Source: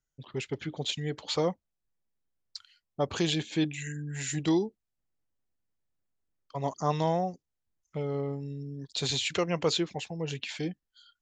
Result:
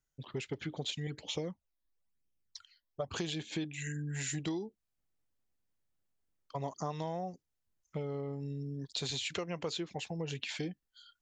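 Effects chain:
0:01.07–0:03.14: all-pass phaser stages 12, 1 Hz, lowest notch 130–1,500 Hz
downward compressor 6 to 1, threshold −34 dBFS, peak gain reduction 12.5 dB

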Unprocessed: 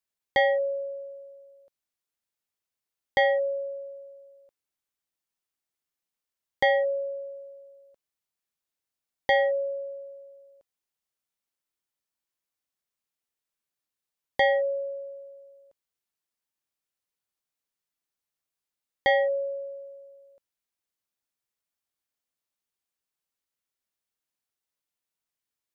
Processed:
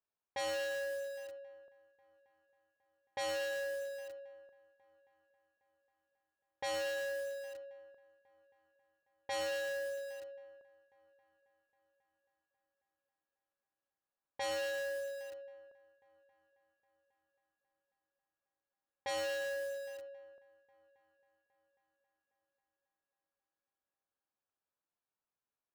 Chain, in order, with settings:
gain into a clipping stage and back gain 35.5 dB
low-shelf EQ 380 Hz −7 dB
notch filter 2,000 Hz, Q 5.2
echo machine with several playback heads 271 ms, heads first and third, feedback 57%, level −24 dB
low-pass that shuts in the quiet parts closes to 1,400 Hz, open at −34 dBFS
feedback echo at a low word length 113 ms, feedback 80%, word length 8 bits, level −6.5 dB
level +2 dB

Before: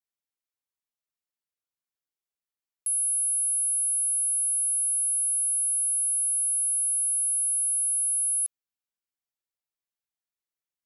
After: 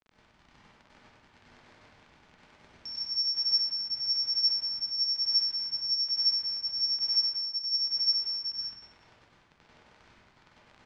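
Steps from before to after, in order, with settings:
surface crackle 54 per second −38 dBFS
rotating-speaker cabinet horn 1.1 Hz
pitch shifter −11.5 semitones
high-frequency loss of the air 150 metres
single-tap delay 96 ms −5 dB
dense smooth reverb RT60 1.2 s, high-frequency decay 0.6×, pre-delay 85 ms, DRR −7.5 dB
level +1 dB

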